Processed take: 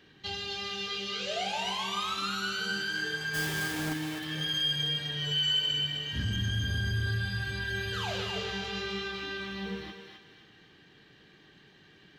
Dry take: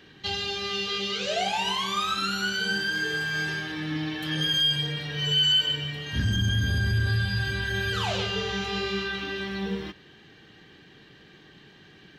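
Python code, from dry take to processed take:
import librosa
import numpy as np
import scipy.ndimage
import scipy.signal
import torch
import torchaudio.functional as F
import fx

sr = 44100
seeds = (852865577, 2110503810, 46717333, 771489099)

y = fx.halfwave_hold(x, sr, at=(3.33, 3.92), fade=0.02)
y = fx.echo_thinned(y, sr, ms=259, feedback_pct=39, hz=720.0, wet_db=-4.0)
y = y * librosa.db_to_amplitude(-6.5)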